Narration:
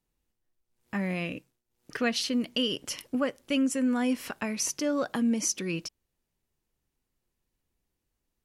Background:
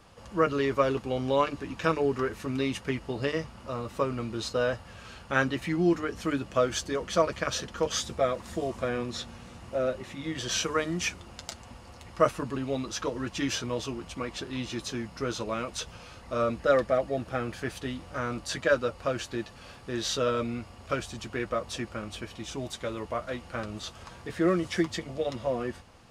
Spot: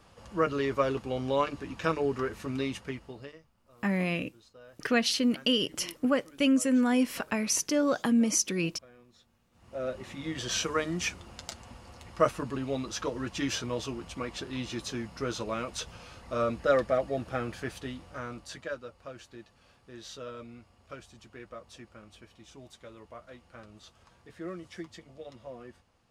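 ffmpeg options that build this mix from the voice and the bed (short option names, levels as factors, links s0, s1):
-filter_complex "[0:a]adelay=2900,volume=1.26[s0];[1:a]volume=11.9,afade=t=out:st=2.58:d=0.81:silence=0.0707946,afade=t=in:st=9.51:d=0.57:silence=0.0630957,afade=t=out:st=17.43:d=1.36:silence=0.223872[s1];[s0][s1]amix=inputs=2:normalize=0"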